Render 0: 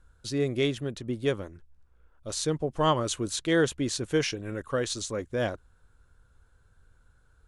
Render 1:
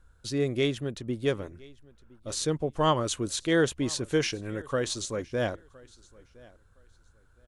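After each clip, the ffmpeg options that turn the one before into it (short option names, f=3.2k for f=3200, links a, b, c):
-af "aecho=1:1:1014|2028:0.0631|0.0133"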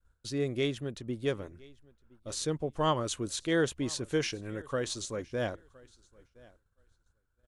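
-af "agate=range=-33dB:threshold=-51dB:ratio=3:detection=peak,volume=-4dB"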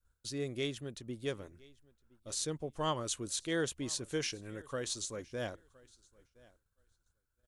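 -af "highshelf=f=4k:g=9,volume=-6.5dB"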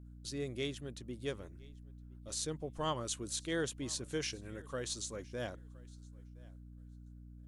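-af "aeval=exprs='val(0)+0.00355*(sin(2*PI*60*n/s)+sin(2*PI*2*60*n/s)/2+sin(2*PI*3*60*n/s)/3+sin(2*PI*4*60*n/s)/4+sin(2*PI*5*60*n/s)/5)':c=same,volume=-2dB"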